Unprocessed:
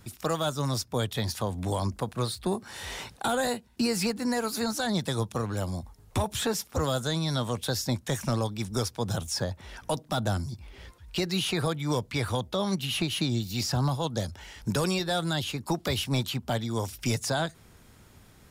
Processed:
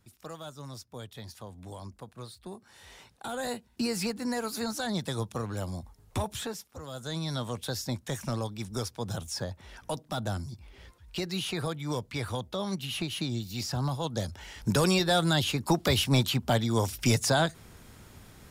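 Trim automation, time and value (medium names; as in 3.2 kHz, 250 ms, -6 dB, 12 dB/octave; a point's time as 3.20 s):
3.08 s -14 dB
3.56 s -3.5 dB
6.29 s -3.5 dB
6.82 s -16 dB
7.17 s -4.5 dB
13.74 s -4.5 dB
14.97 s +3.5 dB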